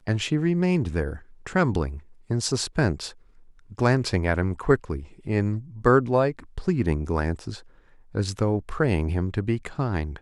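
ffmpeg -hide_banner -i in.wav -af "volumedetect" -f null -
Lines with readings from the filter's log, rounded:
mean_volume: -24.9 dB
max_volume: -5.1 dB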